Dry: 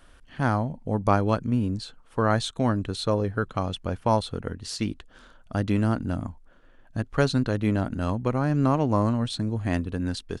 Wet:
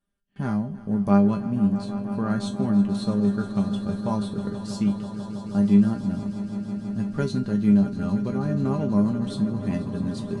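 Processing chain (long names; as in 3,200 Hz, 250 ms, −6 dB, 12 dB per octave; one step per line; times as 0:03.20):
parametric band 180 Hz +14 dB 2.2 octaves
tuned comb filter 200 Hz, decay 0.22 s, harmonics all, mix 90%
echo that builds up and dies away 162 ms, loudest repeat 5, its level −16 dB
noise gate with hold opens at −43 dBFS
high-shelf EQ 5,800 Hz +7 dB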